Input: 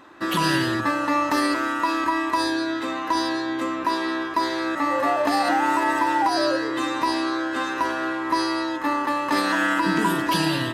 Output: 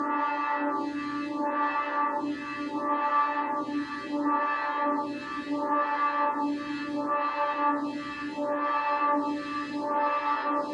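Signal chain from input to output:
extreme stretch with random phases 47×, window 0.50 s, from 0:08.98
high-frequency loss of the air 110 metres
phaser with staggered stages 0.71 Hz
level −1.5 dB

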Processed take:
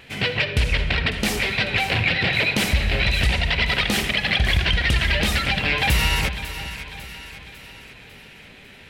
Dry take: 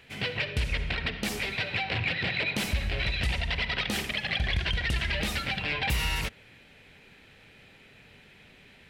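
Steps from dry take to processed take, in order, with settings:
pitch vibrato 3.3 Hz 22 cents
echo with a time of its own for lows and highs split 990 Hz, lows 379 ms, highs 549 ms, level −11.5 dB
level +8.5 dB

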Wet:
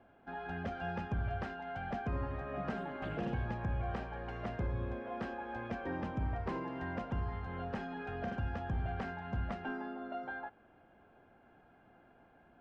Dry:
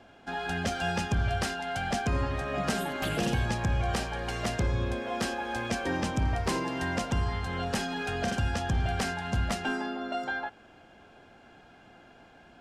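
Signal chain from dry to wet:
low-pass filter 1,700 Hz 12 dB per octave
level −8 dB

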